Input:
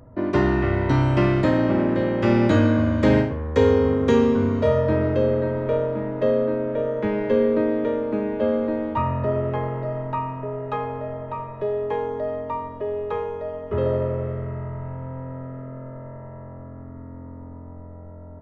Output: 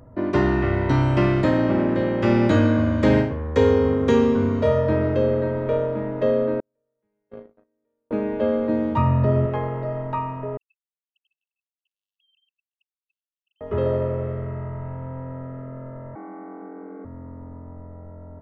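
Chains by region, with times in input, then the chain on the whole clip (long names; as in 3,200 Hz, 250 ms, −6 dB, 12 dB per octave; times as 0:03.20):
0:06.60–0:08.11: noise gate −15 dBFS, range −53 dB + high-shelf EQ 3,500 Hz −5.5 dB
0:08.69–0:09.46: high-pass filter 96 Hz + bass and treble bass +10 dB, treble +7 dB
0:10.57–0:13.61: three sine waves on the formant tracks + linear-phase brick-wall high-pass 2,600 Hz
0:16.15–0:17.05: Butterworth low-pass 2,600 Hz 96 dB per octave + frequency shifter +190 Hz
whole clip: no processing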